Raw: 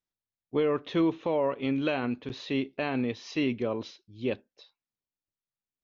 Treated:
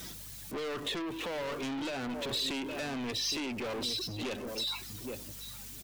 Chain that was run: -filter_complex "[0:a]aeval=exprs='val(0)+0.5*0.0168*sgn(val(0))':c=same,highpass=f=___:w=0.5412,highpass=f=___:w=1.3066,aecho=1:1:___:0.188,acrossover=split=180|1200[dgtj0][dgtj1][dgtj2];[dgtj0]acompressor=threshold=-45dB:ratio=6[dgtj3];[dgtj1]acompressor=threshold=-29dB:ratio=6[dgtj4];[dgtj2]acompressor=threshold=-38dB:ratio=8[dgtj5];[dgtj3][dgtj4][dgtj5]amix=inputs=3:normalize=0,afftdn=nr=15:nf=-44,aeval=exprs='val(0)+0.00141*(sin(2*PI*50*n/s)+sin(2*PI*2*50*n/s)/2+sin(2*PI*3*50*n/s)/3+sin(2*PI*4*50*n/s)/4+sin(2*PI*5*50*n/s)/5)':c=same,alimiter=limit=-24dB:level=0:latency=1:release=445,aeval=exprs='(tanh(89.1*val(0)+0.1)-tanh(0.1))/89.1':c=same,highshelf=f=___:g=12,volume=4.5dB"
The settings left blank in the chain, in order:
80, 80, 815, 2.8k